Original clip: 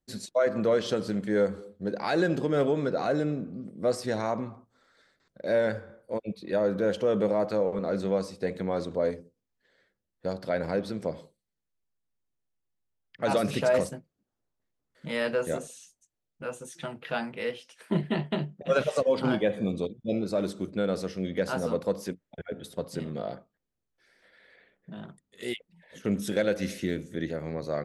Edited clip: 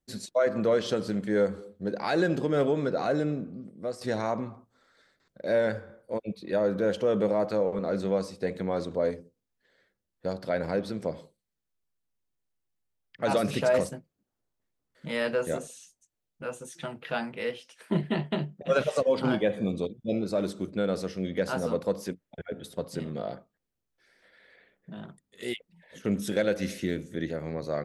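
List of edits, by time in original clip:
0:03.36–0:04.01: fade out, to −10.5 dB

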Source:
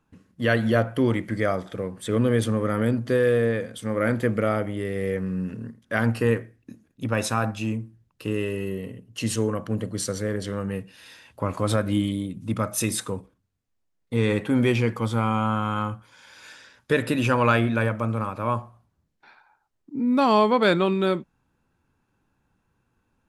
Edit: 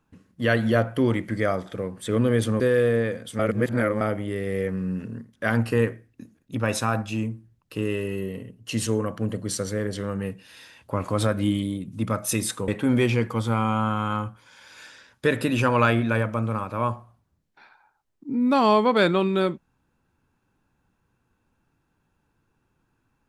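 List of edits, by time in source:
0:02.60–0:03.09: remove
0:03.88–0:04.50: reverse
0:13.17–0:14.34: remove

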